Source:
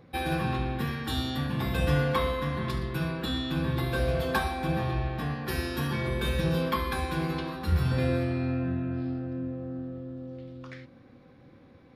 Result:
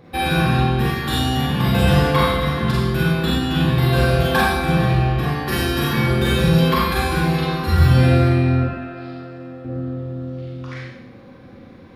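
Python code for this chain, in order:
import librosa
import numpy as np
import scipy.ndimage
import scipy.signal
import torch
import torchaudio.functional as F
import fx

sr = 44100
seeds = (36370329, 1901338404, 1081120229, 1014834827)

y = fx.highpass(x, sr, hz=800.0, slope=6, at=(8.63, 9.65))
y = fx.rev_schroeder(y, sr, rt60_s=0.75, comb_ms=32, drr_db=-4.5)
y = y * librosa.db_to_amplitude(6.5)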